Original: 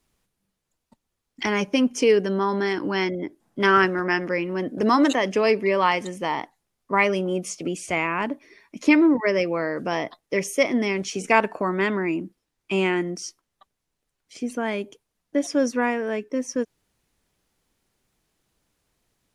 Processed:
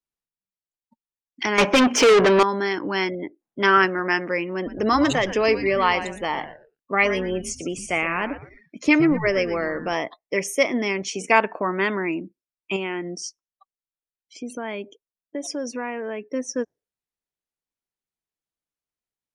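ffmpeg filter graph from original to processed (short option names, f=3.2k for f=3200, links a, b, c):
-filter_complex "[0:a]asettb=1/sr,asplit=3[a][b][c];[a]atrim=end=1.584[d];[b]atrim=start=1.58:end=2.43,asetpts=PTS-STARTPTS,afade=t=in:d=0.004:c=qsin,afade=t=out:st=0.846:d=0.004:c=qsin,aemphasis=mode=reproduction:type=75fm,asplit=2[e][f];[f]highpass=f=720:p=1,volume=32dB,asoftclip=type=tanh:threshold=-8dB[g];[e][g]amix=inputs=2:normalize=0,lowpass=f=3.8k:p=1,volume=-6dB[h];[c]atrim=start=2.426[i];[d][h]acrossfade=d=0.004:c1=hsin:c2=qsin[j];[j][i]acrossfade=d=0.004:c1=qsin:c2=hsin,asettb=1/sr,asplit=3[k][l][m];[k]atrim=end=4.544[n];[l]atrim=start=4.54:end=9.94,asetpts=PTS-STARTPTS,afade=t=in:d=0.004:c=qsin,afade=t=out:st=5.396:d=0.004:c=qsin,bandreject=f=980:w=9.3,asplit=4[o][p][q][r];[p]adelay=117,afreqshift=-150,volume=-11.5dB[s];[q]adelay=234,afreqshift=-300,volume=-21.1dB[t];[r]adelay=351,afreqshift=-450,volume=-30.8dB[u];[o][s][t][u]amix=inputs=4:normalize=0,atrim=end_sample=238140[v];[m]atrim=start=9.936[w];[n][v]acrossfade=d=0.004:c1=hsin:c2=qsin[x];[x][w]acrossfade=d=0.004:c1=qsin:c2=hsin,asettb=1/sr,asplit=3[y][z][aa];[y]atrim=end=12.764[ab];[z]atrim=start=12.76:end=16.21,asetpts=PTS-STARTPTS,afade=t=in:d=0.004:c=qsin,afade=t=out:st=3.446:d=0.004:c=qsin,equalizer=f=1.6k:t=o:w=0.83:g=-2.5,acompressor=threshold=-26dB:ratio=3:attack=3.2:release=140:knee=1:detection=peak[ac];[aa]atrim=start=16.206[ad];[ab][ac]acrossfade=d=0.004:c1=hsin:c2=qsin[ae];[ae][ad]acrossfade=d=0.004:c1=qsin:c2=hsin,lowshelf=f=320:g=-6.5,afftdn=nr=24:nf=-47,volume=2dB"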